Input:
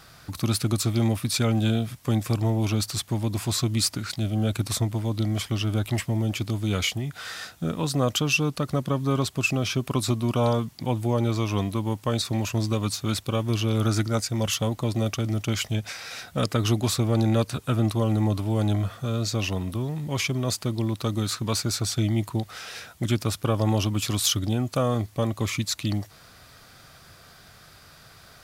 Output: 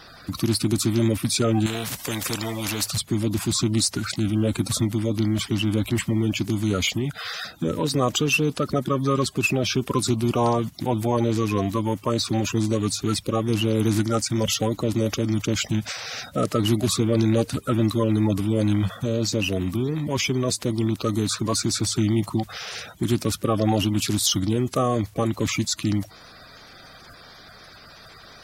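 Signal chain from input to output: bin magnitudes rounded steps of 30 dB; in parallel at -2 dB: limiter -22 dBFS, peak gain reduction 11.5 dB; 1.66–2.88 on the sum: spectral compressor 2:1

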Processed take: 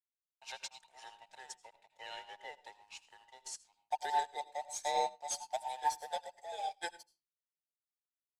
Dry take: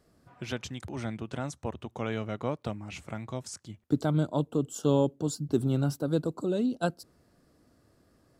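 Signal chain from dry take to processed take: band inversion scrambler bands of 1000 Hz; Chebyshev high-pass 400 Hz, order 3; differentiator; sample leveller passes 2; sample gate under -52 dBFS; air absorption 63 m; on a send at -7 dB: reverb RT60 0.30 s, pre-delay 76 ms; on the sum: upward expander 2.5:1, over -51 dBFS; gain +7.5 dB

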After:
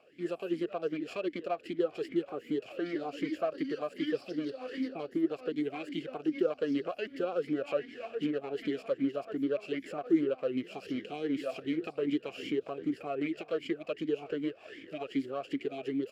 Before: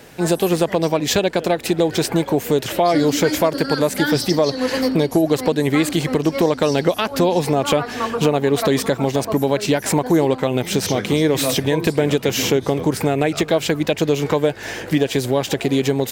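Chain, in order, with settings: minimum comb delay 0.4 ms; vowel sweep a-i 2.6 Hz; gain -6 dB

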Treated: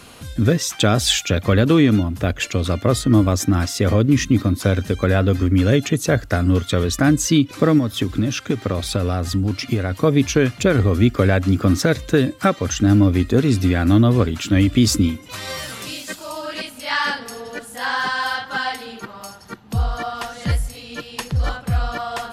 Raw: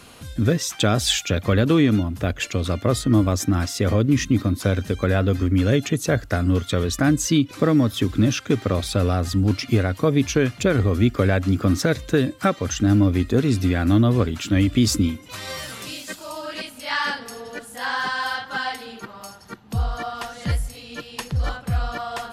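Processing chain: 7.78–9.92 compressor, threshold -19 dBFS, peak gain reduction 6.5 dB; gain +3 dB

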